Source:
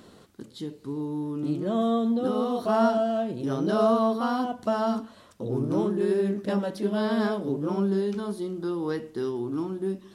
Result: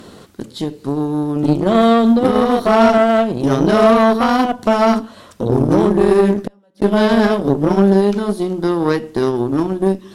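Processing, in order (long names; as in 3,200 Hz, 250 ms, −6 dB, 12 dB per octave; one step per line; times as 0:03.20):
in parallel at −2 dB: downward compressor, threshold −37 dBFS, peak gain reduction 18 dB
0:06.37–0:06.82: on the sum: gate with flip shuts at −23 dBFS, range −35 dB
harmonic generator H 4 −20 dB, 7 −23 dB, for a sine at −10.5 dBFS
boost into a limiter +14.5 dB
level −1 dB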